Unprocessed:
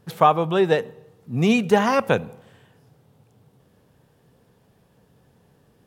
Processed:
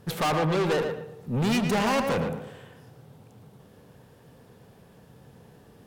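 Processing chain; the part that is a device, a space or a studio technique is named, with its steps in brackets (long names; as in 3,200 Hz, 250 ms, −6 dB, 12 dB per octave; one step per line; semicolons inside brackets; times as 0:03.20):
rockabilly slapback (tube saturation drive 29 dB, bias 0.35; tape delay 115 ms, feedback 31%, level −4 dB, low-pass 2,500 Hz)
level +6 dB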